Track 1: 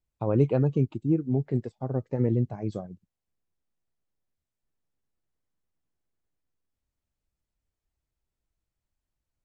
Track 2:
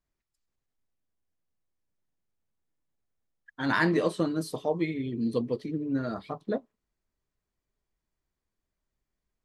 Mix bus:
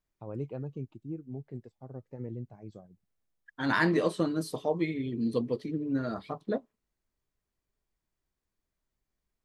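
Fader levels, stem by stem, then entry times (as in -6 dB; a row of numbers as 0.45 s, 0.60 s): -14.5 dB, -1.0 dB; 0.00 s, 0.00 s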